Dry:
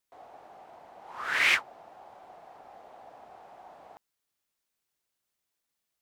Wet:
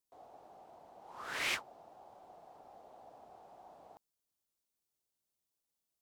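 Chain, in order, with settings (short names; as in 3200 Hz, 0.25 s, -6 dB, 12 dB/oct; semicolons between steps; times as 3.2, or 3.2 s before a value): bell 1900 Hz -10.5 dB 1.6 oct; gain -3.5 dB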